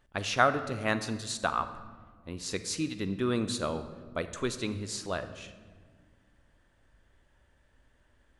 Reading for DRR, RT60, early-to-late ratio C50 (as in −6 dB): 11.0 dB, 1.6 s, 12.0 dB